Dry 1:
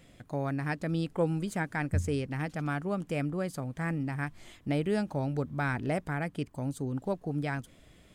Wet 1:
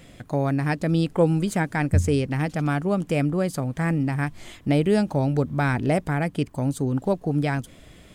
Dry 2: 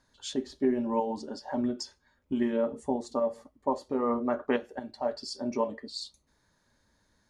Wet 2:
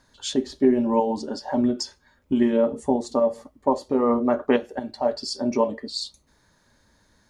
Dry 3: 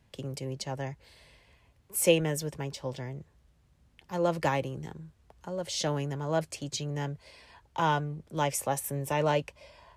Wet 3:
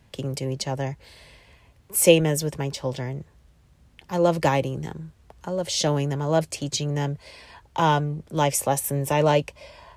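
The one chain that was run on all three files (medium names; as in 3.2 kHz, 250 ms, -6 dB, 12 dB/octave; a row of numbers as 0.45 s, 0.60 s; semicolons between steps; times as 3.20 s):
dynamic bell 1.5 kHz, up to -4 dB, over -44 dBFS, Q 1.1; normalise loudness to -24 LUFS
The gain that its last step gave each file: +9.5 dB, +8.5 dB, +8.0 dB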